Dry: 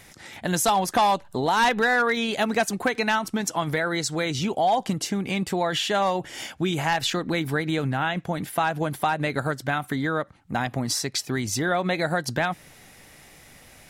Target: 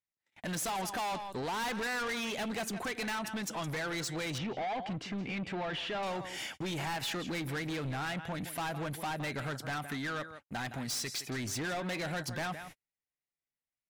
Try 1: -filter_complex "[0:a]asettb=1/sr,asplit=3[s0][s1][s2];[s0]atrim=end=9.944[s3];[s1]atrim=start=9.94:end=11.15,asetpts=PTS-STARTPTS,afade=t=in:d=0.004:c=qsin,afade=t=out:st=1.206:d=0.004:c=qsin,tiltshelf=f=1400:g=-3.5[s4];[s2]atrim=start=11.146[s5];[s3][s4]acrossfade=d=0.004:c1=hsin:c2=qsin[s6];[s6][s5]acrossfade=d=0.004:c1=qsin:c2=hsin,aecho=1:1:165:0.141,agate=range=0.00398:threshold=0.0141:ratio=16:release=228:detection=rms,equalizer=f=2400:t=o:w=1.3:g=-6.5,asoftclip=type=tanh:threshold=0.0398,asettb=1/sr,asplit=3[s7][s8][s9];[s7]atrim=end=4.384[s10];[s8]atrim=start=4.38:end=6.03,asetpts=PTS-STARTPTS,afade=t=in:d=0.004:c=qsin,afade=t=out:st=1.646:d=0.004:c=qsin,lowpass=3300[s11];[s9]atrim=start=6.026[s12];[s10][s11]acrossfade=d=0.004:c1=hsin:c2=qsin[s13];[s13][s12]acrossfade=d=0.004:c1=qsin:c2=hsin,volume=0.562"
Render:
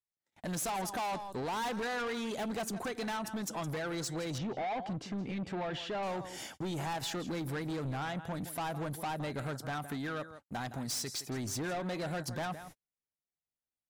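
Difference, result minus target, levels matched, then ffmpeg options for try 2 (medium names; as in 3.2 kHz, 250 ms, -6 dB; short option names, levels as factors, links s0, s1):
2 kHz band -3.5 dB
-filter_complex "[0:a]asettb=1/sr,asplit=3[s0][s1][s2];[s0]atrim=end=9.944[s3];[s1]atrim=start=9.94:end=11.15,asetpts=PTS-STARTPTS,afade=t=in:d=0.004:c=qsin,afade=t=out:st=1.206:d=0.004:c=qsin,tiltshelf=f=1400:g=-3.5[s4];[s2]atrim=start=11.146[s5];[s3][s4]acrossfade=d=0.004:c1=hsin:c2=qsin[s6];[s6][s5]acrossfade=d=0.004:c1=qsin:c2=hsin,aecho=1:1:165:0.141,agate=range=0.00398:threshold=0.0141:ratio=16:release=228:detection=rms,equalizer=f=2400:t=o:w=1.3:g=4,asoftclip=type=tanh:threshold=0.0398,asettb=1/sr,asplit=3[s7][s8][s9];[s7]atrim=end=4.384[s10];[s8]atrim=start=4.38:end=6.03,asetpts=PTS-STARTPTS,afade=t=in:d=0.004:c=qsin,afade=t=out:st=1.646:d=0.004:c=qsin,lowpass=3300[s11];[s9]atrim=start=6.026[s12];[s10][s11]acrossfade=d=0.004:c1=hsin:c2=qsin[s13];[s13][s12]acrossfade=d=0.004:c1=qsin:c2=hsin,volume=0.562"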